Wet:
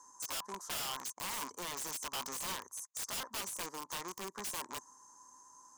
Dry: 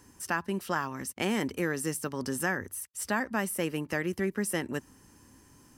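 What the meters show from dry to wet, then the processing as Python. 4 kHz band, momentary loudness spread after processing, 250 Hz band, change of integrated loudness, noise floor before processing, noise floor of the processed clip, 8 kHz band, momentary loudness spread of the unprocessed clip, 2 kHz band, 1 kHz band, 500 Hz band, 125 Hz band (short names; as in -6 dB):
+1.0 dB, 16 LU, -20.5 dB, -7.5 dB, -59 dBFS, -64 dBFS, -2.0 dB, 5 LU, -13.0 dB, -7.0 dB, -16.0 dB, -20.0 dB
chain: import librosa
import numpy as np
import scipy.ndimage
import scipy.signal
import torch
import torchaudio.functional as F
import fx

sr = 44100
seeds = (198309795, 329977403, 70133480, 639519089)

y = fx.rattle_buzz(x, sr, strikes_db=-37.0, level_db=-22.0)
y = fx.double_bandpass(y, sr, hz=2600.0, octaves=2.7)
y = (np.mod(10.0 ** (43.0 / 20.0) * y + 1.0, 2.0) - 1.0) / 10.0 ** (43.0 / 20.0)
y = y * librosa.db_to_amplitude(9.5)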